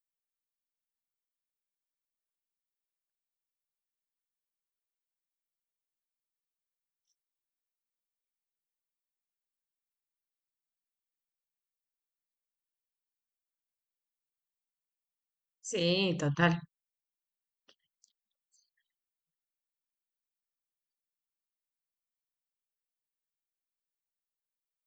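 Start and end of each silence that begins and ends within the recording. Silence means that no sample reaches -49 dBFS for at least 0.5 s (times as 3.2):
16.65–17.69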